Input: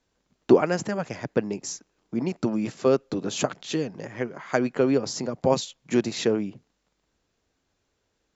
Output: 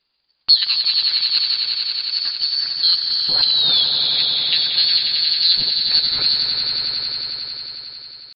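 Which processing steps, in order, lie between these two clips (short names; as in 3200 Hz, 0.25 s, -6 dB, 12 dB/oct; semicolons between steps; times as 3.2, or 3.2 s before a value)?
painted sound rise, 3.31–3.86, 380–1200 Hz -21 dBFS; inverted band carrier 3700 Hz; air absorption 53 m; pitch shift +4.5 st; swelling echo 90 ms, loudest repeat 5, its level -8 dB; gain +4 dB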